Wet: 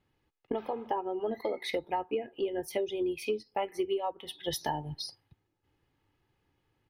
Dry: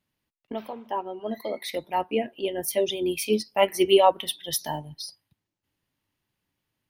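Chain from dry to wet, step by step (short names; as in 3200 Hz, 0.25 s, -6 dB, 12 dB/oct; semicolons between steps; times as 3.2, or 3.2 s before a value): LPF 1400 Hz 6 dB/oct; comb 2.4 ms, depth 49%; compressor 16:1, threshold -36 dBFS, peak gain reduction 26 dB; gain +7.5 dB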